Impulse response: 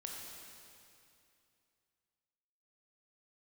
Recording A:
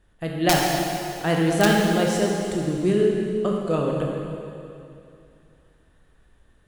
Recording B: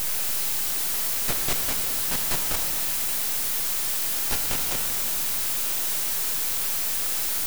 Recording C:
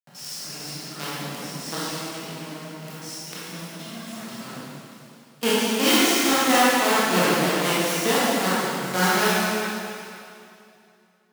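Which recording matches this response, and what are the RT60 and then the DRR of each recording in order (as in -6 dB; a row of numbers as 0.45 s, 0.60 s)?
A; 2.6 s, 2.6 s, 2.6 s; -1.5 dB, 4.0 dB, -10.0 dB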